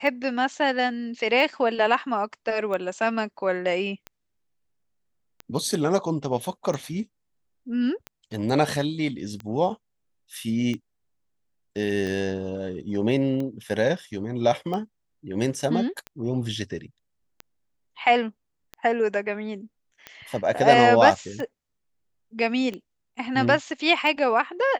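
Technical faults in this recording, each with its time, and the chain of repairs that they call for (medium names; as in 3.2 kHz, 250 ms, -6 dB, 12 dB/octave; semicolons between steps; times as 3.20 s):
tick 45 rpm -20 dBFS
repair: de-click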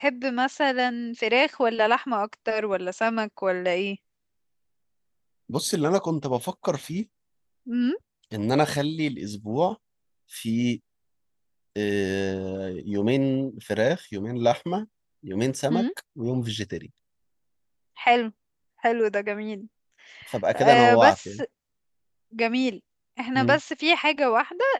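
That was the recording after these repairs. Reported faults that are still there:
nothing left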